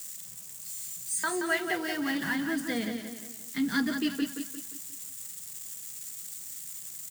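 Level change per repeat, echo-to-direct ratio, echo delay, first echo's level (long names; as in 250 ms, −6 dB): −7.5 dB, −6.0 dB, 176 ms, −7.0 dB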